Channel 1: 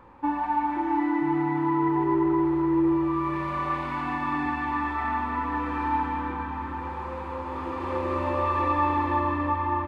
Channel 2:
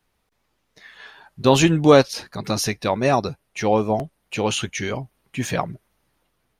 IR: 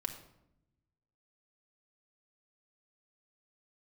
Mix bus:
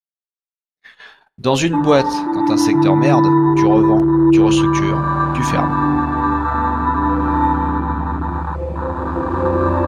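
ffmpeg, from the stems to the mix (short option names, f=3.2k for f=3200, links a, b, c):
-filter_complex "[0:a]afwtdn=0.0447,bass=f=250:g=8,treble=f=4k:g=13,aecho=1:1:6.1:0.31,adelay=1500,volume=-1.5dB[a];[1:a]bandreject=f=52.13:t=h:w=4,bandreject=f=104.26:t=h:w=4,bandreject=f=156.39:t=h:w=4,bandreject=f=208.52:t=h:w=4,bandreject=f=260.65:t=h:w=4,bandreject=f=312.78:t=h:w=4,bandreject=f=364.91:t=h:w=4,bandreject=f=417.04:t=h:w=4,bandreject=f=469.17:t=h:w=4,bandreject=f=521.3:t=h:w=4,agate=range=-50dB:threshold=-45dB:ratio=16:detection=peak,volume=-9dB,asplit=2[b][c];[c]volume=-16dB[d];[2:a]atrim=start_sample=2205[e];[d][e]afir=irnorm=-1:irlink=0[f];[a][b][f]amix=inputs=3:normalize=0,highshelf=f=11k:g=-6.5,dynaudnorm=f=210:g=5:m=12.5dB"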